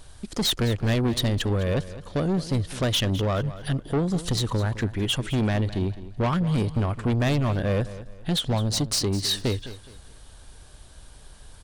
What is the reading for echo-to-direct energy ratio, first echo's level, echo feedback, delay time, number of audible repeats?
-14.5 dB, -15.0 dB, 32%, 209 ms, 3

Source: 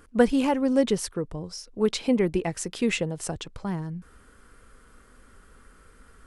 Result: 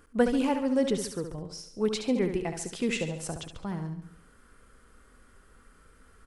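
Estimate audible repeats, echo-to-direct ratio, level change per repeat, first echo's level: 5, -7.0 dB, -6.5 dB, -8.0 dB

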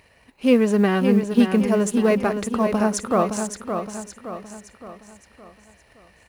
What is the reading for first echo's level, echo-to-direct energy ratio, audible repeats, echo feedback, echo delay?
-7.0 dB, -6.0 dB, 5, 46%, 567 ms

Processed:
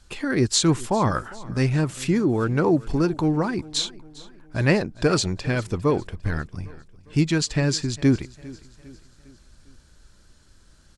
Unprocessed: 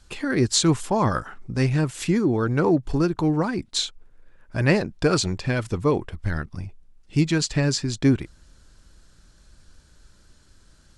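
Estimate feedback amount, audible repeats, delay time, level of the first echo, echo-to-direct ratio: 48%, 3, 403 ms, -20.5 dB, -19.5 dB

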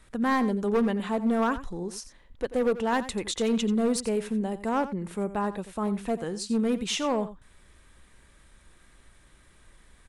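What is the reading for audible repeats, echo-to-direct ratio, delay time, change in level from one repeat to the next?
1, -14.0 dB, 88 ms, no regular repeats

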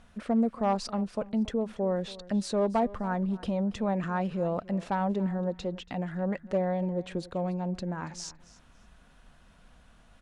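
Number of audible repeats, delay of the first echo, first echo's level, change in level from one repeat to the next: 2, 282 ms, -19.0 dB, -13.5 dB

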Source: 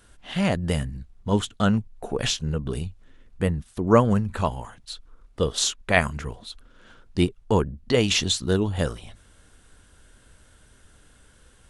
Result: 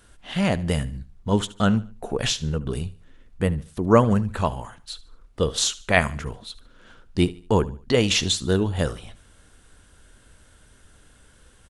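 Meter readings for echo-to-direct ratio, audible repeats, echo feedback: -18.5 dB, 2, 35%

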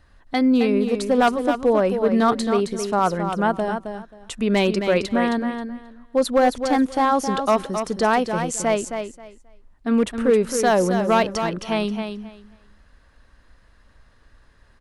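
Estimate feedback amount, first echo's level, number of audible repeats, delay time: 19%, -7.5 dB, 2, 267 ms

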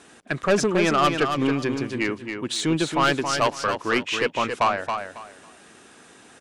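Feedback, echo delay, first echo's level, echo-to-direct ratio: 23%, 274 ms, -6.5 dB, -6.5 dB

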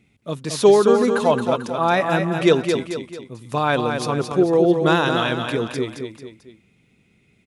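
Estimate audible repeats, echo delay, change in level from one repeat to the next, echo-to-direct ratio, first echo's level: 3, 221 ms, -7.0 dB, -5.0 dB, -6.0 dB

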